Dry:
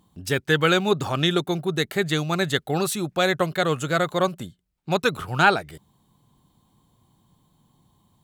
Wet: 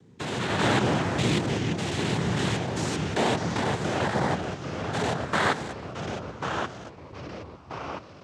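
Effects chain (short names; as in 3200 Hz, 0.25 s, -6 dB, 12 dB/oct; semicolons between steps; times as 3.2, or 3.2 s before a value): stepped spectrum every 0.2 s; noise vocoder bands 6; echoes that change speed 83 ms, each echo -3 st, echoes 3, each echo -6 dB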